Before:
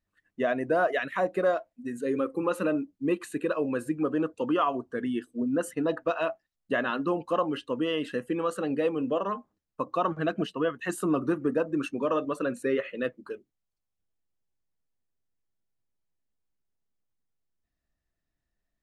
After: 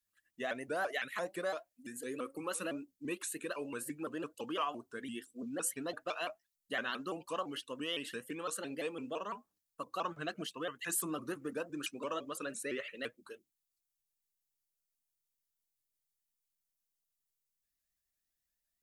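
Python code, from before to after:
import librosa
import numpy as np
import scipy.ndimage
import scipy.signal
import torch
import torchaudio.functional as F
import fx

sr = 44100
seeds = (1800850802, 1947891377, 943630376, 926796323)

y = scipy.signal.lfilter([1.0, -0.9], [1.0], x)
y = fx.vibrato_shape(y, sr, shape='saw_up', rate_hz=5.9, depth_cents=160.0)
y = F.gain(torch.from_numpy(y), 5.5).numpy()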